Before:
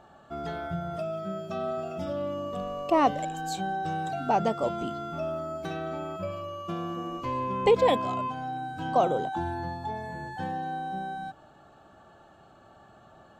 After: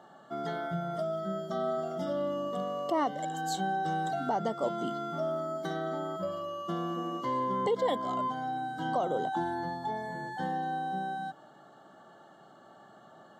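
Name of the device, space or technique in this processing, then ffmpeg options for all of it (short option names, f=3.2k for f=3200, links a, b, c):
PA system with an anti-feedback notch: -af "highpass=f=150:w=0.5412,highpass=f=150:w=1.3066,asuperstop=centerf=2500:order=12:qfactor=4.4,alimiter=limit=-20dB:level=0:latency=1:release=298"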